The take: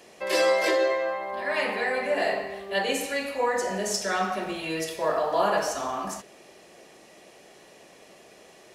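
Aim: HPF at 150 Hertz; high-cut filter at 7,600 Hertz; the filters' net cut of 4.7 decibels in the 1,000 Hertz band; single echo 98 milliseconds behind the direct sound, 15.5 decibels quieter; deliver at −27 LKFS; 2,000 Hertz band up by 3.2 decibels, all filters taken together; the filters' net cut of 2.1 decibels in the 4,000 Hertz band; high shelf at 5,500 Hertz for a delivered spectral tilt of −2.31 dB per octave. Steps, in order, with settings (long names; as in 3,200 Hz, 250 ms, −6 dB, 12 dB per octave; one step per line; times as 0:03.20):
high-pass filter 150 Hz
low-pass filter 7,600 Hz
parametric band 1,000 Hz −8 dB
parametric band 2,000 Hz +7 dB
parametric band 4,000 Hz −7.5 dB
high-shelf EQ 5,500 Hz +6 dB
single-tap delay 98 ms −15.5 dB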